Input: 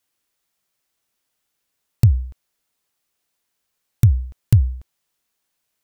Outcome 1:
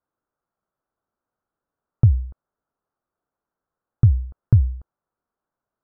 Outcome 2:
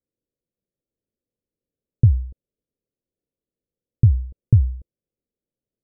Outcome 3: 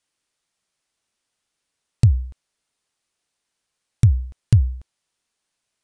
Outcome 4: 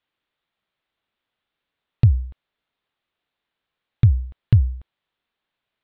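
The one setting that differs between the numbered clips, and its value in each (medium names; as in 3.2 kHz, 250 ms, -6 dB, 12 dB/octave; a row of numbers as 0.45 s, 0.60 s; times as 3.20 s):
Chebyshev low-pass, frequency: 1.4 kHz, 520 Hz, 9.7 kHz, 3.7 kHz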